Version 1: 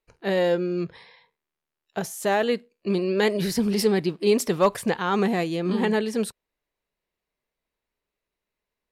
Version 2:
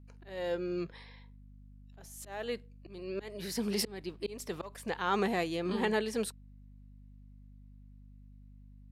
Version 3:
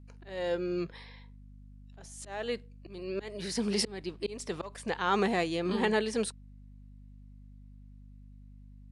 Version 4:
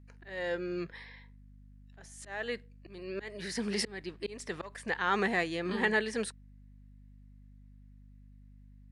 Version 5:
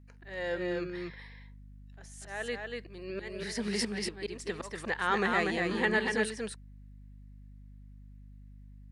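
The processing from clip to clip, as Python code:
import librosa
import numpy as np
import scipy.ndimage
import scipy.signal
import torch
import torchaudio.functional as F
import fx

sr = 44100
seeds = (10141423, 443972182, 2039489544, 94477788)

y1 = fx.low_shelf(x, sr, hz=230.0, db=-10.5)
y1 = fx.auto_swell(y1, sr, attack_ms=497.0)
y1 = fx.add_hum(y1, sr, base_hz=50, snr_db=16)
y1 = F.gain(torch.from_numpy(y1), -4.5).numpy()
y2 = scipy.signal.sosfilt(scipy.signal.ellip(4, 1.0, 40, 10000.0, 'lowpass', fs=sr, output='sos'), y1)
y2 = F.gain(torch.from_numpy(y2), 3.5).numpy()
y3 = fx.peak_eq(y2, sr, hz=1800.0, db=10.0, octaves=0.58)
y3 = F.gain(torch.from_numpy(y3), -3.5).numpy()
y4 = y3 + 10.0 ** (-3.5 / 20.0) * np.pad(y3, (int(239 * sr / 1000.0), 0))[:len(y3)]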